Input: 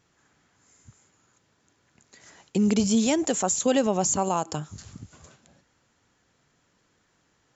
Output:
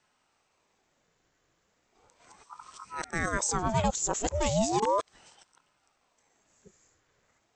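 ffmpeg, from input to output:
ffmpeg -i in.wav -af "areverse,aeval=exprs='val(0)*sin(2*PI*690*n/s+690*0.7/0.36*sin(2*PI*0.36*n/s))':channel_layout=same,volume=-2dB" out.wav

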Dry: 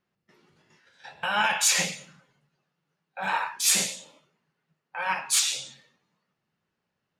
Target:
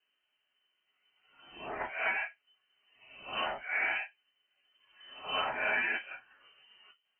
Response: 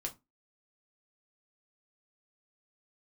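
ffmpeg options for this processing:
-filter_complex "[0:a]areverse[link_01];[1:a]atrim=start_sample=2205,asetrate=52920,aresample=44100[link_02];[link_01][link_02]afir=irnorm=-1:irlink=0,lowpass=frequency=2700:width_type=q:width=0.5098,lowpass=frequency=2700:width_type=q:width=0.6013,lowpass=frequency=2700:width_type=q:width=0.9,lowpass=frequency=2700:width_type=q:width=2.563,afreqshift=-3200,acrossover=split=380|2500[link_03][link_04][link_05];[link_03]acompressor=threshold=-54dB:ratio=4[link_06];[link_04]acompressor=threshold=-33dB:ratio=4[link_07];[link_05]acompressor=threshold=-43dB:ratio=4[link_08];[link_06][link_07][link_08]amix=inputs=3:normalize=0,volume=2.5dB"

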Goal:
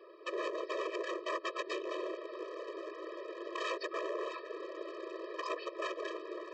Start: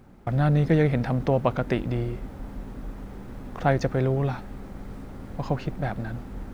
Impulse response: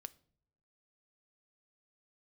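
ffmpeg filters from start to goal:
-filter_complex "[0:a]afftfilt=real='hypot(re,im)*cos(2*PI*random(0))':imag='hypot(re,im)*sin(2*PI*random(1))':win_size=512:overlap=0.75,asplit=2[link_01][link_02];[link_02]aeval=exprs='sgn(val(0))*max(abs(val(0))-0.00891,0)':channel_layout=same,volume=-6dB[link_03];[link_01][link_03]amix=inputs=2:normalize=0,aresample=11025,aresample=44100,acompressor=threshold=-34dB:ratio=10,aresample=16000,aeval=exprs='0.0119*(abs(mod(val(0)/0.0119+3,4)-2)-1)':channel_layout=same,aresample=44100,lowshelf=frequency=120:gain=-11.5,afftfilt=real='re*eq(mod(floor(b*sr/1024/330),2),1)':imag='im*eq(mod(floor(b*sr/1024/330),2),1)':win_size=1024:overlap=0.75,volume=12dB"

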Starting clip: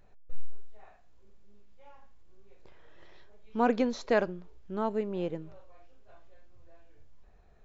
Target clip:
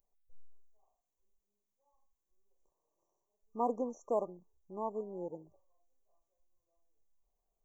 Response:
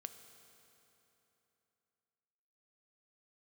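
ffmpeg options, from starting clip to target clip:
-af "afwtdn=0.0112,afftfilt=real='re*(1-between(b*sr/4096,1200,5600))':imag='im*(1-between(b*sr/4096,1200,5600))':win_size=4096:overlap=0.75,aemphasis=mode=production:type=riaa,volume=-4dB"

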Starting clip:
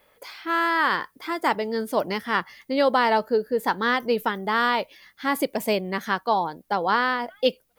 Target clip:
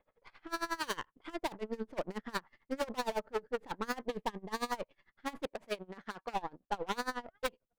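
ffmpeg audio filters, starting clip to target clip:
ffmpeg -i in.wav -filter_complex "[0:a]aeval=exprs='if(lt(val(0),0),0.447*val(0),val(0))':channel_layout=same,asettb=1/sr,asplit=3[link_01][link_02][link_03];[link_01]atrim=end=0.834[link_04];[link_02]atrim=start=0.83:end=1.36,asetpts=PTS-STARTPTS,afade=type=in:duration=0.004:curve=qsin,afade=type=out:start_time=0.526:duration=0.004:curve=qsin,equalizer=frequency=3100:width_type=o:width=0.29:gain=10[link_05];[link_03]atrim=start=1.356[link_06];[link_04][link_05]acrossfade=duration=0.004:curve1=hsin:curve2=qsin[link_07];[link_07][link_06]acrossfade=duration=0.004:curve1=qsin:curve2=hsin,adynamicsmooth=sensitivity=2.5:basefreq=1700,aeval=exprs='0.0944*(abs(mod(val(0)/0.0944+3,4)-2)-1)':channel_layout=same,asettb=1/sr,asplit=3[link_08][link_09][link_10];[link_08]atrim=end=4.054[link_11];[link_09]atrim=start=4.05:end=4.72,asetpts=PTS-STARTPTS,afade=type=in:duration=0.004:curve=qsin,afade=type=out:start_time=0.666:duration=0.004:curve=qsin,asuperstop=centerf=1400:order=8:qfactor=5.5[link_12];[link_10]atrim=start=4.716[link_13];[link_11][link_12]acrossfade=duration=0.004:curve1=hsin:curve2=qsin[link_14];[link_14][link_13]acrossfade=duration=0.004:curve1=qsin:curve2=hsin,asettb=1/sr,asplit=3[link_15][link_16][link_17];[link_15]atrim=end=5.454[link_18];[link_16]atrim=start=5.45:end=6.34,asetpts=PTS-STARTPTS,afade=type=in:duration=0.004:curve=qsin,afade=type=out:start_time=0.886:duration=0.004:curve=qsin,lowshelf=frequency=220:gain=-11.5[link_19];[link_17]atrim=start=6.336[link_20];[link_18][link_19]acrossfade=duration=0.004:curve1=hsin:curve2=qsin[link_21];[link_21][link_20]acrossfade=duration=0.004:curve1=qsin:curve2=hsin,aeval=exprs='val(0)*pow(10,-24*(0.5-0.5*cos(2*PI*11*n/s))/20)':channel_layout=same,volume=-3.5dB" out.wav

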